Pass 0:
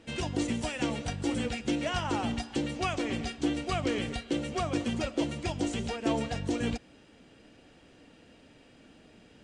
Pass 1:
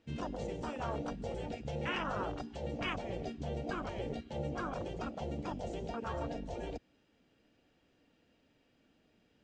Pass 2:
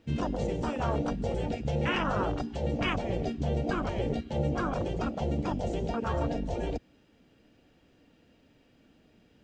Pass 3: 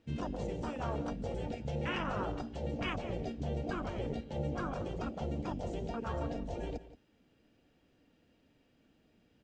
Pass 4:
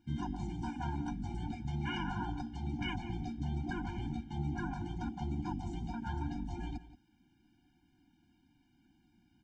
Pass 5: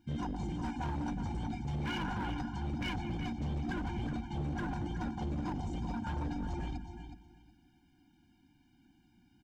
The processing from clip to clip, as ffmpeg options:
-af "lowpass=f=7200:w=0.5412,lowpass=f=7200:w=1.3066,afwtdn=0.02,afftfilt=real='re*lt(hypot(re,im),0.1)':imag='im*lt(hypot(re,im),0.1)':win_size=1024:overlap=0.75,volume=1.26"
-af "lowshelf=f=340:g=5,volume=2"
-filter_complex "[0:a]asplit=2[s0][s1];[s1]adelay=174.9,volume=0.178,highshelf=f=4000:g=-3.94[s2];[s0][s2]amix=inputs=2:normalize=0,volume=0.447"
-af "afftfilt=real='re*eq(mod(floor(b*sr/1024/350),2),0)':imag='im*eq(mod(floor(b*sr/1024/350),2),0)':win_size=1024:overlap=0.75,volume=1.12"
-af "aecho=1:1:368|736|1104:0.335|0.067|0.0134,asoftclip=type=hard:threshold=0.02,volume=1.33"

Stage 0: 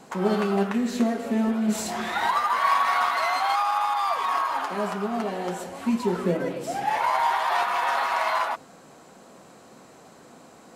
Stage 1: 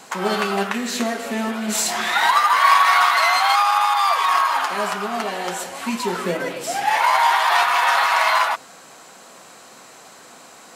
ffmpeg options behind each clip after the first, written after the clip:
-af "tiltshelf=f=690:g=-8,volume=1.58"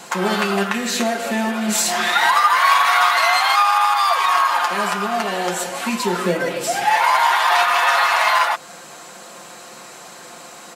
-filter_complex "[0:a]aecho=1:1:5.7:0.49,asplit=2[s0][s1];[s1]acompressor=threshold=0.0562:ratio=6,volume=1[s2];[s0][s2]amix=inputs=2:normalize=0,volume=0.841"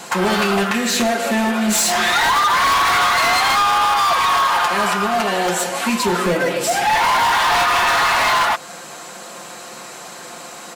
-af "asoftclip=type=hard:threshold=0.141,volume=1.58"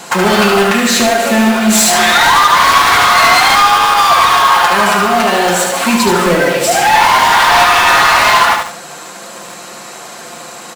-filter_complex "[0:a]aecho=1:1:73|146|219|292|365:0.562|0.214|0.0812|0.0309|0.0117,asplit=2[s0][s1];[s1]acrusher=bits=3:mix=0:aa=0.000001,volume=0.335[s2];[s0][s2]amix=inputs=2:normalize=0,volume=1.5"

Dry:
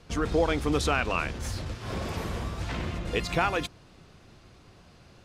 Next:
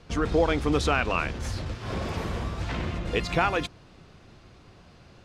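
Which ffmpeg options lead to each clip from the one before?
-af "highshelf=f=9300:g=-11.5,volume=1.26"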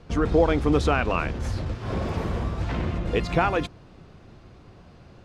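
-af "tiltshelf=f=1500:g=4"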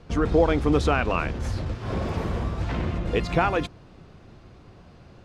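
-af anull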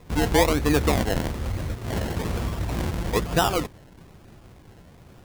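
-af "acrusher=samples=29:mix=1:aa=0.000001:lfo=1:lforange=17.4:lforate=1.1"

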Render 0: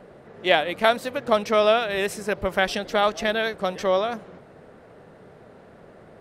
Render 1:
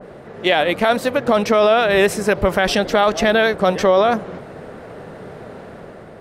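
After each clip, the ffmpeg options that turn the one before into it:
-af "dynaudnorm=f=240:g=5:m=1.58,alimiter=limit=0.2:level=0:latency=1:release=27,adynamicequalizer=threshold=0.0158:dfrequency=1900:dqfactor=0.7:tfrequency=1900:tqfactor=0.7:attack=5:release=100:ratio=0.375:range=2.5:mode=cutabove:tftype=highshelf,volume=2.82"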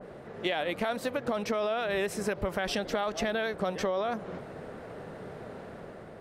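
-af "acompressor=threshold=0.1:ratio=5,volume=0.422"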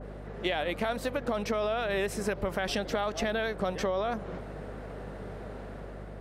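-af "aeval=exprs='val(0)+0.00708*(sin(2*PI*50*n/s)+sin(2*PI*2*50*n/s)/2+sin(2*PI*3*50*n/s)/3+sin(2*PI*4*50*n/s)/4+sin(2*PI*5*50*n/s)/5)':c=same"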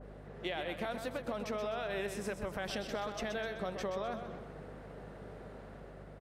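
-af "aecho=1:1:127|254|381|508|635:0.398|0.163|0.0669|0.0274|0.0112,volume=0.398"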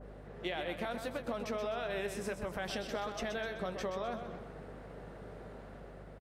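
-filter_complex "[0:a]asplit=2[s0][s1];[s1]adelay=17,volume=0.224[s2];[s0][s2]amix=inputs=2:normalize=0"

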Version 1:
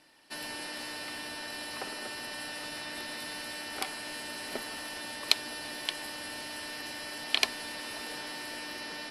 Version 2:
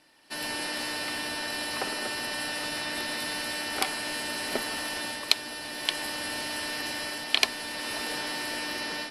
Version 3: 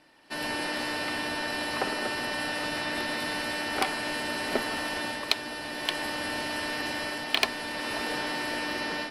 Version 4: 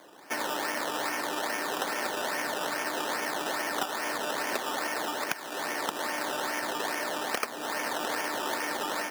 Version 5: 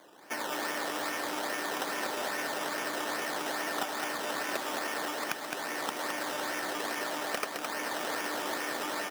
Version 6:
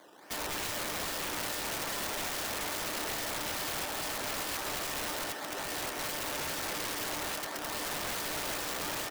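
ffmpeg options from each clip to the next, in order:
-af "dynaudnorm=f=220:g=3:m=2.24"
-filter_complex "[0:a]highshelf=f=3700:g=-10.5,asplit=2[s0][s1];[s1]aeval=exprs='0.0891*(abs(mod(val(0)/0.0891+3,4)-2)-1)':c=same,volume=0.335[s2];[s0][s2]amix=inputs=2:normalize=0,volume=1.19"
-filter_complex "[0:a]acrusher=samples=16:mix=1:aa=0.000001:lfo=1:lforange=9.6:lforate=2.4,acrossover=split=720|6500[s0][s1][s2];[s0]acompressor=threshold=0.00562:ratio=4[s3];[s1]acompressor=threshold=0.01:ratio=4[s4];[s2]acompressor=threshold=0.00398:ratio=4[s5];[s3][s4][s5]amix=inputs=3:normalize=0,highpass=290,volume=2.66"
-af "aecho=1:1:214:0.596,volume=0.668"
-af "aeval=exprs='(mod(29.9*val(0)+1,2)-1)/29.9':c=same"

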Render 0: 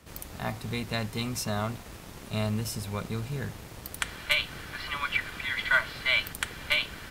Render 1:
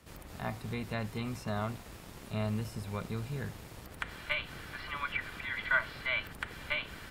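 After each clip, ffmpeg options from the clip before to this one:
-filter_complex "[0:a]acrossover=split=2600[s0][s1];[s1]acompressor=threshold=0.00501:ratio=4:attack=1:release=60[s2];[s0][s2]amix=inputs=2:normalize=0,bandreject=f=6100:w=29,volume=0.631"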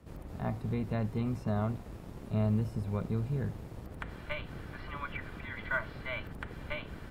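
-af "acrusher=bits=8:mode=log:mix=0:aa=0.000001,tiltshelf=f=1100:g=8,volume=0.75"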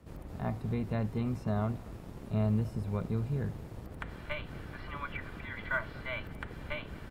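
-af "aecho=1:1:233:0.0668"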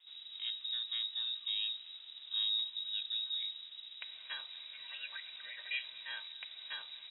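-af "lowpass=f=3300:t=q:w=0.5098,lowpass=f=3300:t=q:w=0.6013,lowpass=f=3300:t=q:w=0.9,lowpass=f=3300:t=q:w=2.563,afreqshift=-3900,volume=0.501"

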